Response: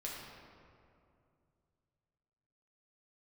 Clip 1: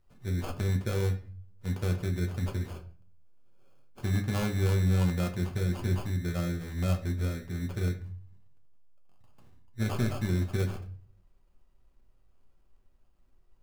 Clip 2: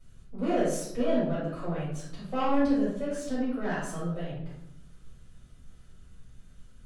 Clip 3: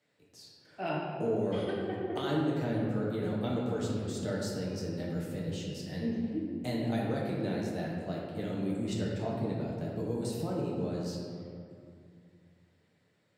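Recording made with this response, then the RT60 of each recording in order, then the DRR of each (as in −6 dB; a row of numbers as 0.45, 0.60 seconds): 3; 0.40, 0.80, 2.5 seconds; 2.5, −13.0, −4.5 decibels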